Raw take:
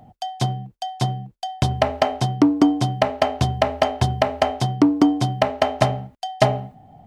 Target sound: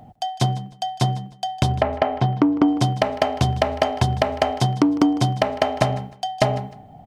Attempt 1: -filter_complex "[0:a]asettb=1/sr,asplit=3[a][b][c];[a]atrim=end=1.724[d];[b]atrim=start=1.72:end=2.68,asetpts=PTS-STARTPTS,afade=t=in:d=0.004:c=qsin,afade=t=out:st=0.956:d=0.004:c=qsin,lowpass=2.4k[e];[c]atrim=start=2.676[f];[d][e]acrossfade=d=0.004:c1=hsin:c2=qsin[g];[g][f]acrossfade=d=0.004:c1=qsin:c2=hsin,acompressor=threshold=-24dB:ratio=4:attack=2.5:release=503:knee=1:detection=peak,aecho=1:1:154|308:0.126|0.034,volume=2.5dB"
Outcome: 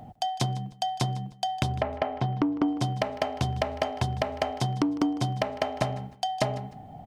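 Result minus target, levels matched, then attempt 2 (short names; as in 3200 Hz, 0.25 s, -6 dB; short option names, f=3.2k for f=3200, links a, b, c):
compressor: peak gain reduction +8.5 dB
-filter_complex "[0:a]asettb=1/sr,asplit=3[a][b][c];[a]atrim=end=1.724[d];[b]atrim=start=1.72:end=2.68,asetpts=PTS-STARTPTS,afade=t=in:d=0.004:c=qsin,afade=t=out:st=0.956:d=0.004:c=qsin,lowpass=2.4k[e];[c]atrim=start=2.676[f];[d][e]acrossfade=d=0.004:c1=hsin:c2=qsin[g];[g][f]acrossfade=d=0.004:c1=qsin:c2=hsin,acompressor=threshold=-12.5dB:ratio=4:attack=2.5:release=503:knee=1:detection=peak,aecho=1:1:154|308:0.126|0.034,volume=2.5dB"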